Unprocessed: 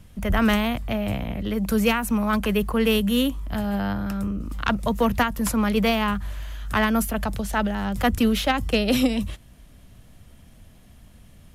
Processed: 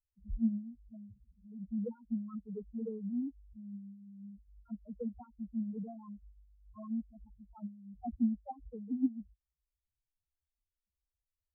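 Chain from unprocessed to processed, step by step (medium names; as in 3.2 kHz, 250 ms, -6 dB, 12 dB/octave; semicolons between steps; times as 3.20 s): loudest bins only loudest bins 2; upward expansion 2.5:1, over -40 dBFS; trim -6.5 dB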